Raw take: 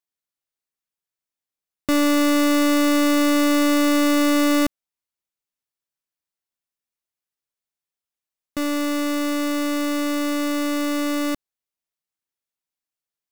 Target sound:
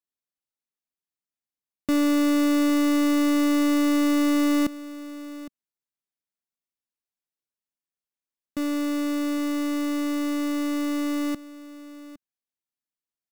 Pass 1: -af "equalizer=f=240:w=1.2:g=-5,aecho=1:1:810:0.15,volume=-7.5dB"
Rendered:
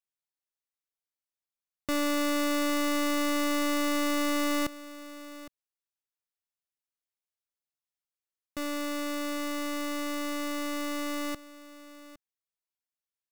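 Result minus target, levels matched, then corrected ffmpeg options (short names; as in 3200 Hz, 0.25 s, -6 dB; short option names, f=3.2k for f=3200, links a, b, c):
250 Hz band -3.0 dB
-af "equalizer=f=240:w=1.2:g=7,aecho=1:1:810:0.15,volume=-7.5dB"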